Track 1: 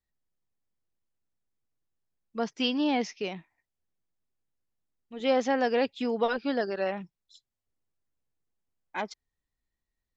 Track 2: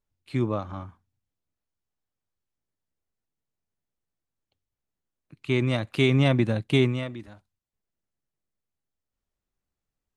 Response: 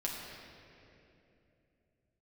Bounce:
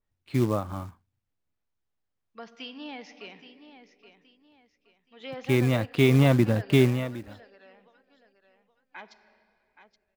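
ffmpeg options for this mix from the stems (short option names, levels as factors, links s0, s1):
-filter_complex "[0:a]lowpass=6400,equalizer=f=2200:w=0.31:g=14.5,acrossover=split=420[s0][s1];[s1]acompressor=threshold=0.0562:ratio=3[s2];[s0][s2]amix=inputs=2:normalize=0,volume=0.119,asplit=3[s3][s4][s5];[s4]volume=0.282[s6];[s5]volume=0.299[s7];[1:a]lowpass=f=2900:p=1,acrusher=bits=5:mode=log:mix=0:aa=0.000001,volume=1.19[s8];[2:a]atrim=start_sample=2205[s9];[s6][s9]afir=irnorm=-1:irlink=0[s10];[s7]aecho=0:1:823|1646|2469|3292|4115:1|0.33|0.109|0.0359|0.0119[s11];[s3][s8][s10][s11]amix=inputs=4:normalize=0,adynamicequalizer=threshold=0.01:dfrequency=2800:dqfactor=0.7:tfrequency=2800:tqfactor=0.7:attack=5:release=100:ratio=0.375:range=2.5:mode=cutabove:tftype=highshelf"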